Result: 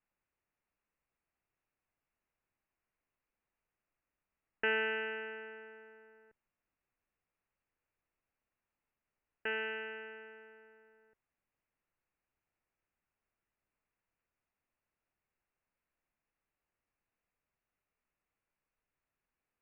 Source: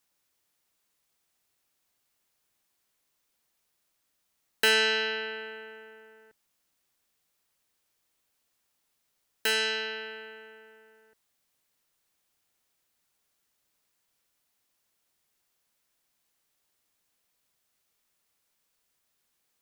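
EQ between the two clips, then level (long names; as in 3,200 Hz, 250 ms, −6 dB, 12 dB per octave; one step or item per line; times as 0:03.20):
Butterworth low-pass 2,800 Hz 96 dB per octave
high-frequency loss of the air 160 metres
low-shelf EQ 67 Hz +11 dB
−6.5 dB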